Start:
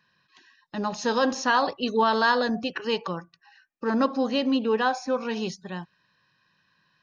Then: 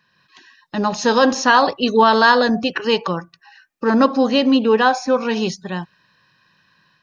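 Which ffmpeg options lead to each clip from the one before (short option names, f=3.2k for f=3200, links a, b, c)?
-af "dynaudnorm=f=110:g=3:m=4.5dB,volume=4.5dB"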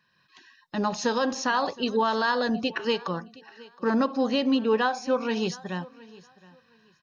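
-af "alimiter=limit=-8dB:level=0:latency=1:release=322,aecho=1:1:717|1434:0.0841|0.0185,volume=-6.5dB"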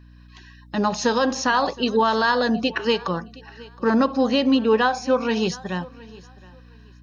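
-af "aeval=exprs='val(0)+0.00282*(sin(2*PI*60*n/s)+sin(2*PI*2*60*n/s)/2+sin(2*PI*3*60*n/s)/3+sin(2*PI*4*60*n/s)/4+sin(2*PI*5*60*n/s)/5)':c=same,volume=5dB"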